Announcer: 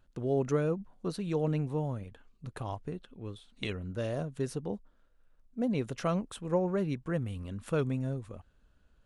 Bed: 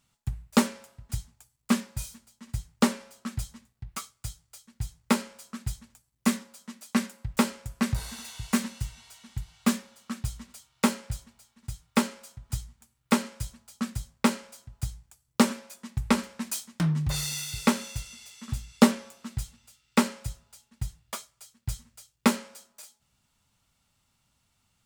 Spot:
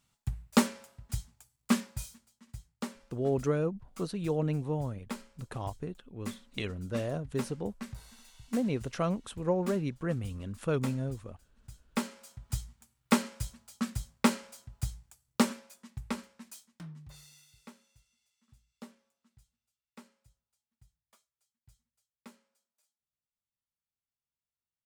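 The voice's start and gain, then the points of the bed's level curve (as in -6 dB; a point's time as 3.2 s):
2.95 s, 0.0 dB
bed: 1.86 s -2.5 dB
2.78 s -15.5 dB
11.52 s -15.5 dB
12.41 s -2 dB
15.13 s -2 dB
17.83 s -30.5 dB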